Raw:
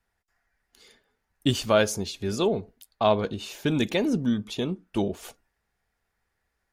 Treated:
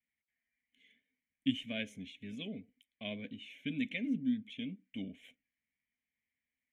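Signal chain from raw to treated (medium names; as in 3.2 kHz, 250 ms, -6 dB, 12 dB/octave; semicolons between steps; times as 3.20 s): wow and flutter 72 cents; vowel filter i; static phaser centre 1.3 kHz, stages 6; trim +4.5 dB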